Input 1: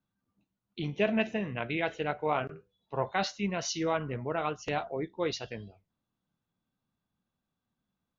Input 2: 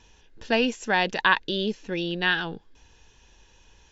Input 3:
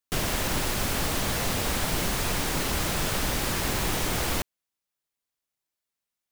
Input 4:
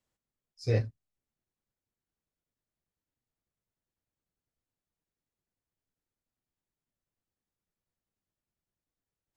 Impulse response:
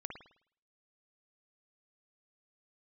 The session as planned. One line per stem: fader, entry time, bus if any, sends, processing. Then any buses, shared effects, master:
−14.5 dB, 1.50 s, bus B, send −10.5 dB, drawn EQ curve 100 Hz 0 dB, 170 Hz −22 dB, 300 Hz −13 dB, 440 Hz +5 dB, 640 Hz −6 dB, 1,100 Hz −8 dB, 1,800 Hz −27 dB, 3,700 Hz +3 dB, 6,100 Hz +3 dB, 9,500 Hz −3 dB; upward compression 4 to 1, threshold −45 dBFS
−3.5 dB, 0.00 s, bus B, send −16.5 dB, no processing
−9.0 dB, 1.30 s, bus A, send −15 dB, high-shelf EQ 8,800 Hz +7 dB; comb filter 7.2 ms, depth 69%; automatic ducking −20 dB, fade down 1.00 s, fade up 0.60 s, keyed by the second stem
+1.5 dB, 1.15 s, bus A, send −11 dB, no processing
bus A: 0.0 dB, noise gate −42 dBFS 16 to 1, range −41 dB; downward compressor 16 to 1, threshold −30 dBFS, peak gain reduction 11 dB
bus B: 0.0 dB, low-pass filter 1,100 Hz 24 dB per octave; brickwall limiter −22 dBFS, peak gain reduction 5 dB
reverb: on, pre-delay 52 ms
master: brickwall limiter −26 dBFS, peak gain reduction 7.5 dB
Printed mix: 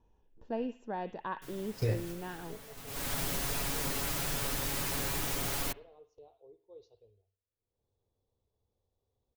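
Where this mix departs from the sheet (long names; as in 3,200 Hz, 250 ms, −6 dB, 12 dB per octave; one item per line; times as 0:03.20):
stem 1 −14.5 dB → −22.0 dB
stem 2 −3.5 dB → −11.5 dB
master: missing brickwall limiter −26 dBFS, peak gain reduction 7.5 dB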